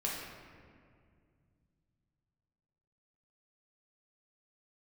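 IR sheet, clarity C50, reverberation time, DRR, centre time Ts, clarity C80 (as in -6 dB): 0.0 dB, 2.1 s, -4.5 dB, 91 ms, 2.5 dB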